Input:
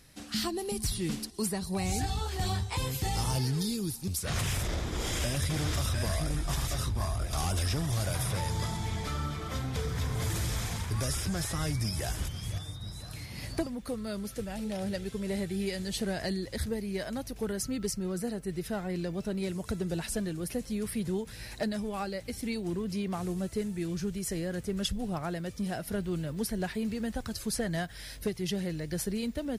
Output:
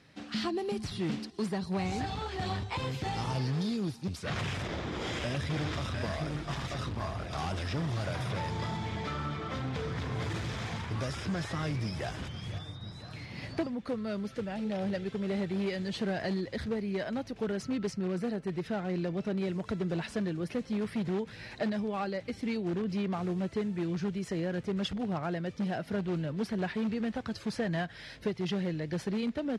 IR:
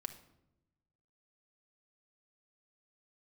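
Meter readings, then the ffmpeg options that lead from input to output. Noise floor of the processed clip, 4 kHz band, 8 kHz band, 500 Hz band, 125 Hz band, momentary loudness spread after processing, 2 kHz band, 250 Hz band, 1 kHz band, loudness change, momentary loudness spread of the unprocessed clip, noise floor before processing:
-49 dBFS, -3.5 dB, -14.0 dB, +1.0 dB, -2.0 dB, 4 LU, +0.5 dB, +1.0 dB, +1.0 dB, -1.0 dB, 6 LU, -45 dBFS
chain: -filter_complex "[0:a]asplit=2[a][b];[b]aeval=exprs='(mod(22.4*val(0)+1,2)-1)/22.4':c=same,volume=-12dB[c];[a][c]amix=inputs=2:normalize=0,highpass=120,lowpass=3.4k"

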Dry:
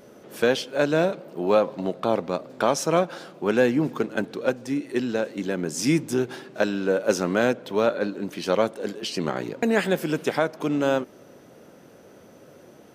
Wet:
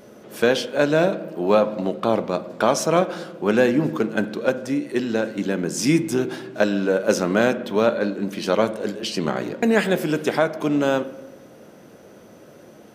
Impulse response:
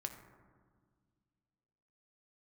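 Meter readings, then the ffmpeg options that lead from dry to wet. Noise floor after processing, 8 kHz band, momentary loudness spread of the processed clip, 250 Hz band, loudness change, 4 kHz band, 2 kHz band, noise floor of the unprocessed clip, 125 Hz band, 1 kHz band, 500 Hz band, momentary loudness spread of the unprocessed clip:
-47 dBFS, +3.0 dB, 7 LU, +3.5 dB, +3.0 dB, +3.0 dB, +3.0 dB, -50 dBFS, +3.5 dB, +3.0 dB, +3.0 dB, 7 LU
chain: -filter_complex "[0:a]asplit=2[a][b];[1:a]atrim=start_sample=2205,asetrate=74970,aresample=44100[c];[b][c]afir=irnorm=-1:irlink=0,volume=4dB[d];[a][d]amix=inputs=2:normalize=0,volume=-1.5dB"

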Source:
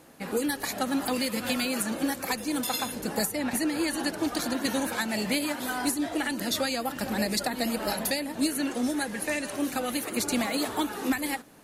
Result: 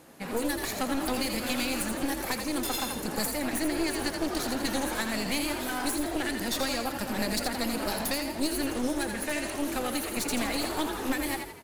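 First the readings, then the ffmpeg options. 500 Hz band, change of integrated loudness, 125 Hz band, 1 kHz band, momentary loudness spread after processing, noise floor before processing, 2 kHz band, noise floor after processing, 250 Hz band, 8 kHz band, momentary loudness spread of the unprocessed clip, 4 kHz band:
-1.0 dB, -1.5 dB, +0.5 dB, -1.0 dB, 2 LU, -40 dBFS, -1.0 dB, -37 dBFS, -2.0 dB, -1.0 dB, 3 LU, -1.0 dB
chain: -filter_complex "[0:a]aeval=exprs='clip(val(0),-1,0.0188)':c=same,asplit=6[a][b][c][d][e][f];[b]adelay=83,afreqshift=43,volume=-6.5dB[g];[c]adelay=166,afreqshift=86,volume=-13.4dB[h];[d]adelay=249,afreqshift=129,volume=-20.4dB[i];[e]adelay=332,afreqshift=172,volume=-27.3dB[j];[f]adelay=415,afreqshift=215,volume=-34.2dB[k];[a][g][h][i][j][k]amix=inputs=6:normalize=0"

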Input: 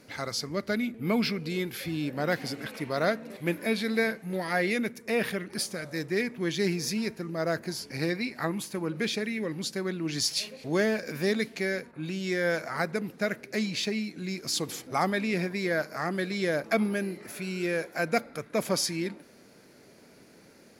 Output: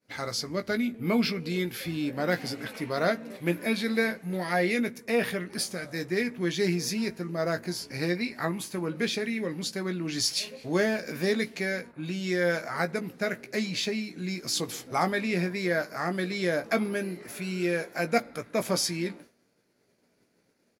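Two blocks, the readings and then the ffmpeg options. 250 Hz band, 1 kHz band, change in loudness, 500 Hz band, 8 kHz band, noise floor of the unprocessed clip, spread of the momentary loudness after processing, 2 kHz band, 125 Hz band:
+0.5 dB, +1.0 dB, +0.5 dB, +0.5 dB, +0.5 dB, -55 dBFS, 6 LU, +0.5 dB, +1.0 dB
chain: -filter_complex "[0:a]agate=range=-33dB:threshold=-44dB:ratio=3:detection=peak,asplit=2[a][b];[b]adelay=17,volume=-8dB[c];[a][c]amix=inputs=2:normalize=0"

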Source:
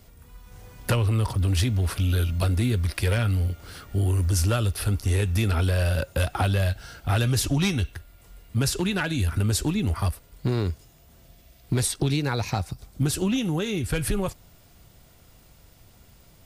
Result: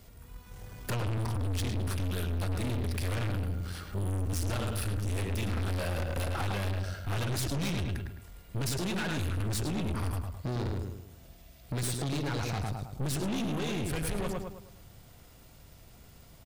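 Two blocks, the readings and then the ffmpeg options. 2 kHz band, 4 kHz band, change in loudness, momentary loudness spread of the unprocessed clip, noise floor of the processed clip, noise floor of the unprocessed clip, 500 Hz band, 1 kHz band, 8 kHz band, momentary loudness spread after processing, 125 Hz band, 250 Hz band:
-7.0 dB, -7.5 dB, -8.0 dB, 7 LU, -54 dBFS, -54 dBFS, -7.0 dB, -5.5 dB, -8.0 dB, 9 LU, -8.5 dB, -7.5 dB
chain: -filter_complex "[0:a]asplit=2[a][b];[b]adelay=106,lowpass=f=2.7k:p=1,volume=-4dB,asplit=2[c][d];[d]adelay=106,lowpass=f=2.7k:p=1,volume=0.42,asplit=2[e][f];[f]adelay=106,lowpass=f=2.7k:p=1,volume=0.42,asplit=2[g][h];[h]adelay=106,lowpass=f=2.7k:p=1,volume=0.42,asplit=2[i][j];[j]adelay=106,lowpass=f=2.7k:p=1,volume=0.42[k];[a][c][e][g][i][k]amix=inputs=6:normalize=0,aeval=exprs='(tanh(31.6*val(0)+0.45)-tanh(0.45))/31.6':c=same"

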